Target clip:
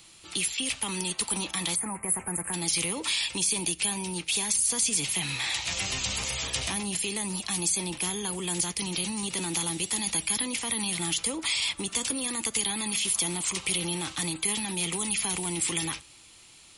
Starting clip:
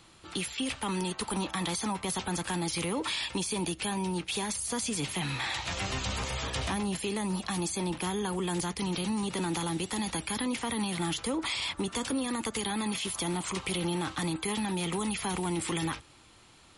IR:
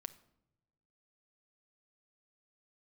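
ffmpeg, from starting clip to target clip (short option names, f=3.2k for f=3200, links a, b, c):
-filter_complex "[0:a]aexciter=amount=3.2:drive=4:freq=2.1k,asplit=3[a][b][c];[a]afade=t=out:st=1.74:d=0.02[d];[b]asuperstop=centerf=4400:order=8:qfactor=0.69,afade=t=in:st=1.74:d=0.02,afade=t=out:st=2.52:d=0.02[e];[c]afade=t=in:st=2.52:d=0.02[f];[d][e][f]amix=inputs=3:normalize=0,asplit=2[g][h];[1:a]atrim=start_sample=2205,afade=t=out:st=0.17:d=0.01,atrim=end_sample=7938[i];[h][i]afir=irnorm=-1:irlink=0,volume=0dB[j];[g][j]amix=inputs=2:normalize=0,volume=-7.5dB"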